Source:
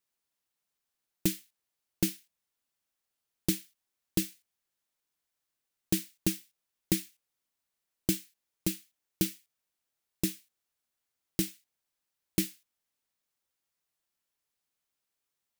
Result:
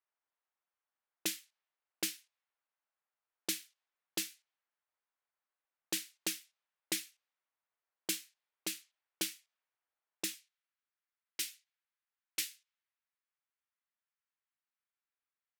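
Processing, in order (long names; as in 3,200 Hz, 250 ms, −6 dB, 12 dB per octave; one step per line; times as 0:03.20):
high-pass filter 710 Hz 12 dB per octave, from 0:10.34 1,500 Hz
low-pass that shuts in the quiet parts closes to 1,600 Hz, open at −35.5 dBFS
high-shelf EQ 9,200 Hz −6 dB
level +1.5 dB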